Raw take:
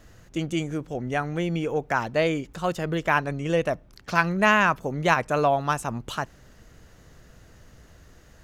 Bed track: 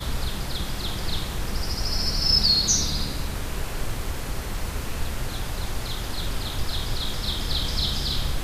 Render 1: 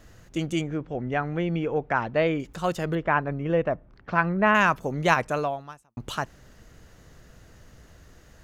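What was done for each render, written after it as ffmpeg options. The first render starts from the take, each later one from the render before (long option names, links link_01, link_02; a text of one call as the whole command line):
ffmpeg -i in.wav -filter_complex "[0:a]asettb=1/sr,asplit=3[link_01][link_02][link_03];[link_01]atrim=end=0.614[link_04];[link_02]atrim=start=0.61:end=2.4,asetpts=PTS-STARTPTS,afade=type=in:duration=0.004:curve=qsin,afade=type=out:start_time=1.786:duration=0.004:curve=qsin,lowpass=2800[link_05];[link_03]atrim=start=2.396[link_06];[link_04][link_05]acrossfade=duration=0.004:curve1=hsin:curve2=qsin[link_07];[link_07][link_06]acrossfade=duration=0.004:curve1=qsin:curve2=hsin,asettb=1/sr,asplit=3[link_08][link_09][link_10];[link_08]atrim=end=2.954[link_11];[link_09]atrim=start=2.95:end=4.55,asetpts=PTS-STARTPTS,afade=type=in:duration=0.004:curve=qsin,afade=type=out:start_time=1.596:duration=0.004:curve=qsin,lowpass=1800[link_12];[link_10]atrim=start=4.546[link_13];[link_11][link_12]acrossfade=duration=0.004:curve1=hsin:curve2=qsin[link_14];[link_14][link_13]acrossfade=duration=0.004:curve1=qsin:curve2=hsin,asplit=2[link_15][link_16];[link_15]atrim=end=5.97,asetpts=PTS-STARTPTS,afade=type=out:start_time=5.24:duration=0.73:curve=qua[link_17];[link_16]atrim=start=5.97,asetpts=PTS-STARTPTS,afade=type=in:duration=0.004:curve=hsin[link_18];[link_17][link_18]concat=n=2:v=0:a=1" out.wav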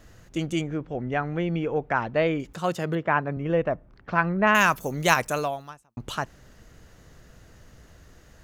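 ffmpeg -i in.wav -filter_complex "[0:a]asettb=1/sr,asplit=3[link_01][link_02][link_03];[link_01]atrim=end=2.534[link_04];[link_02]atrim=start=2.53:end=3.37,asetpts=PTS-STARTPTS,afade=type=in:duration=0.004:curve=qsin,afade=type=out:start_time=0.836:duration=0.004:curve=qsin,highpass=frequency=81:width=0.5412,highpass=frequency=81:width=1.3066[link_05];[link_03]atrim=start=3.366[link_06];[link_04][link_05]acrossfade=duration=0.004:curve1=hsin:curve2=qsin[link_07];[link_07][link_06]acrossfade=duration=0.004:curve1=qsin:curve2=hsin,asettb=1/sr,asplit=3[link_08][link_09][link_10];[link_08]atrim=end=4.474[link_11];[link_09]atrim=start=4.47:end=5.7,asetpts=PTS-STARTPTS,afade=type=in:duration=0.004:curve=qsin,afade=type=out:start_time=1.226:duration=0.004:curve=qsin,aemphasis=mode=production:type=75fm[link_12];[link_10]atrim=start=5.696[link_13];[link_11][link_12]acrossfade=duration=0.004:curve1=hsin:curve2=qsin[link_14];[link_14][link_13]acrossfade=duration=0.004:curve1=qsin:curve2=hsin" out.wav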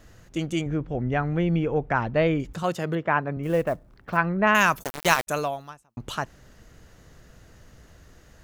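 ffmpeg -i in.wav -filter_complex "[0:a]asettb=1/sr,asplit=3[link_01][link_02][link_03];[link_01]atrim=end=0.664[link_04];[link_02]atrim=start=0.66:end=2.63,asetpts=PTS-STARTPTS,afade=type=in:duration=0.004:curve=qsin,afade=type=out:start_time=1.966:duration=0.004:curve=qsin,lowshelf=frequency=160:gain=10[link_05];[link_03]atrim=start=2.626[link_06];[link_04][link_05]acrossfade=duration=0.004:curve1=hsin:curve2=qsin[link_07];[link_07][link_06]acrossfade=duration=0.004:curve1=qsin:curve2=hsin,asettb=1/sr,asplit=3[link_08][link_09][link_10];[link_08]atrim=end=3.434[link_11];[link_09]atrim=start=3.43:end=4.17,asetpts=PTS-STARTPTS,afade=type=in:duration=0.004:curve=qsin,afade=type=out:start_time=0.736:duration=0.004:curve=qsin,acrusher=bits=7:mode=log:mix=0:aa=0.000001[link_12];[link_10]atrim=start=4.166[link_13];[link_11][link_12]acrossfade=duration=0.004:curve1=hsin:curve2=qsin[link_14];[link_14][link_13]acrossfade=duration=0.004:curve1=qsin:curve2=hsin,asplit=3[link_15][link_16][link_17];[link_15]afade=type=out:start_time=4.82:duration=0.02[link_18];[link_16]aeval=exprs='val(0)*gte(abs(val(0)),0.0708)':channel_layout=same,afade=type=in:start_time=4.82:duration=0.02,afade=type=out:start_time=5.27:duration=0.02[link_19];[link_17]afade=type=in:start_time=5.27:duration=0.02[link_20];[link_18][link_19][link_20]amix=inputs=3:normalize=0" out.wav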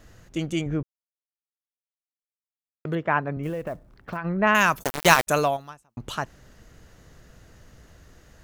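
ffmpeg -i in.wav -filter_complex "[0:a]asplit=3[link_01][link_02][link_03];[link_01]afade=type=out:start_time=3.48:duration=0.02[link_04];[link_02]acompressor=threshold=-26dB:ratio=10:attack=3.2:release=140:knee=1:detection=peak,afade=type=in:start_time=3.48:duration=0.02,afade=type=out:start_time=4.24:duration=0.02[link_05];[link_03]afade=type=in:start_time=4.24:duration=0.02[link_06];[link_04][link_05][link_06]amix=inputs=3:normalize=0,asettb=1/sr,asplit=3[link_07][link_08][link_09];[link_07]atrim=end=4.854[link_10];[link_08]atrim=start=4.85:end=5.57,asetpts=PTS-STARTPTS,afade=type=in:duration=0.004:curve=qsin,afade=type=out:start_time=0.716:duration=0.004:curve=qsin,acontrast=27[link_11];[link_09]atrim=start=5.566[link_12];[link_10][link_11]acrossfade=duration=0.004:curve1=hsin:curve2=qsin[link_13];[link_13][link_12]acrossfade=duration=0.004:curve1=qsin:curve2=hsin,asplit=3[link_14][link_15][link_16];[link_14]atrim=end=0.83,asetpts=PTS-STARTPTS,afade=type=out:start_time=0.826:duration=0.004:curve=hsin[link_17];[link_15]atrim=start=0.83:end=2.85,asetpts=PTS-STARTPTS,volume=0[link_18];[link_16]atrim=start=2.85,asetpts=PTS-STARTPTS,afade=type=in:duration=0.004:curve=hsin[link_19];[link_17][link_18][link_19]concat=n=3:v=0:a=1" out.wav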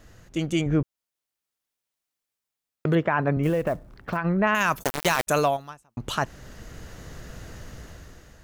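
ffmpeg -i in.wav -af "dynaudnorm=framelen=340:gausssize=5:maxgain=11dB,alimiter=limit=-11.5dB:level=0:latency=1:release=11" out.wav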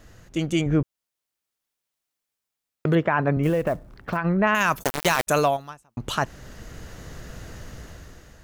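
ffmpeg -i in.wav -af "volume=1.5dB" out.wav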